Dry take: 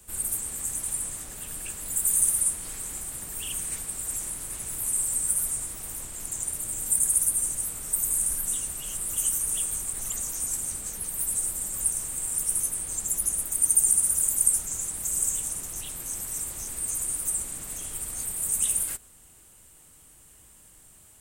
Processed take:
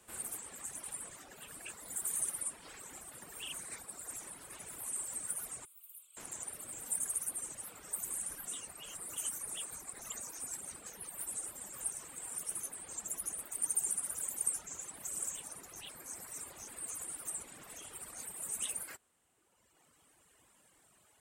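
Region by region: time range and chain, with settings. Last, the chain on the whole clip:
0:05.65–0:06.17: first difference + phaser with its sweep stopped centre 1,200 Hz, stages 8
whole clip: low-pass filter 2,000 Hz 6 dB per octave; reverb reduction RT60 1.9 s; high-pass filter 490 Hz 6 dB per octave; level +1 dB

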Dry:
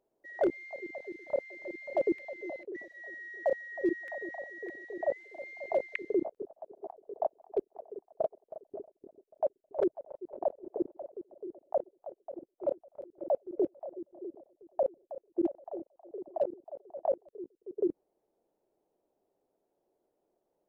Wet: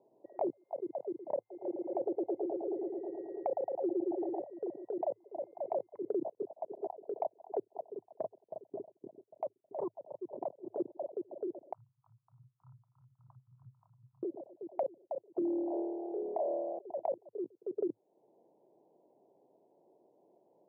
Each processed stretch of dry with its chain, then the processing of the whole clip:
0:01.40–0:04.41: comb filter 2.5 ms, depth 48% + bucket-brigade delay 110 ms, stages 2,048, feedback 61%, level −3 dB
0:07.81–0:10.78: parametric band 560 Hz −10 dB 2.6 octaves + saturating transformer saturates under 660 Hz
0:11.74–0:14.23: Chebyshev band-stop filter 130–1,300 Hz, order 5 + envelope flattener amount 50%
0:15.39–0:16.79: high-pass filter 330 Hz 6 dB per octave + flutter between parallel walls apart 4.5 metres, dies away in 1.1 s
whole clip: Chebyshev band-pass filter 110–1,000 Hz, order 5; brickwall limiter −24.5 dBFS; downward compressor 2.5 to 1, threshold −51 dBFS; level +12 dB

